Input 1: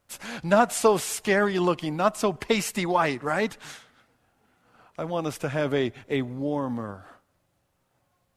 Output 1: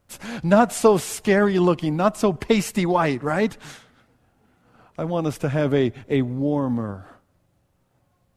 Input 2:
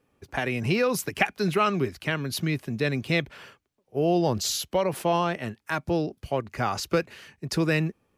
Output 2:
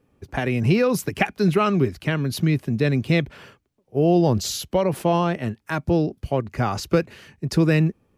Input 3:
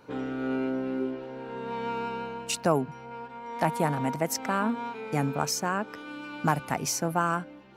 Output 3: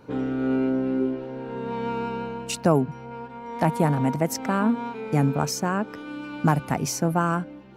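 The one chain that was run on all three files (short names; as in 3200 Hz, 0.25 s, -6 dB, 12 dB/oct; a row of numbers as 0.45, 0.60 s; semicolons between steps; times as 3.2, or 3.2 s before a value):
low shelf 450 Hz +9 dB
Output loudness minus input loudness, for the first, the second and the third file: +4.0, +4.5, +4.5 LU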